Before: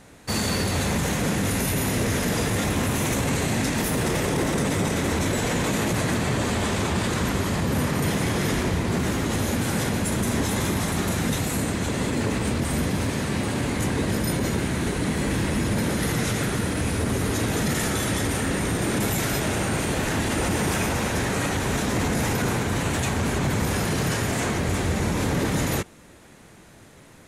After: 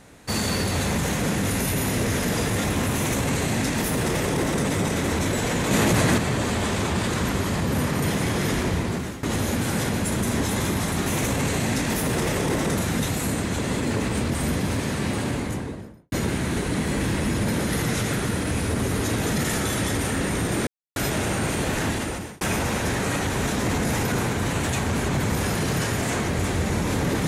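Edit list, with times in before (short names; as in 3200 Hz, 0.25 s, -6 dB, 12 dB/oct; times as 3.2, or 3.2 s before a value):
2.94–4.64 copy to 11.06
5.71–6.18 gain +4.5 dB
8.8–9.23 fade out, to -15.5 dB
13.47–14.42 studio fade out
18.97–19.26 mute
20.17–20.71 fade out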